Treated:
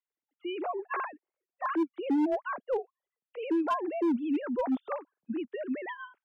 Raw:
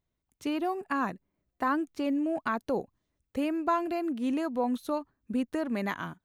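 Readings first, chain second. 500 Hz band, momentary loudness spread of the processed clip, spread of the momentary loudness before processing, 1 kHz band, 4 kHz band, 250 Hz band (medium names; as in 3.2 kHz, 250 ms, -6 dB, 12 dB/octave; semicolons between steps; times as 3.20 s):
0.0 dB, 11 LU, 6 LU, -2.5 dB, no reading, -0.5 dB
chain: formants replaced by sine waves; hard clipper -23 dBFS, distortion -15 dB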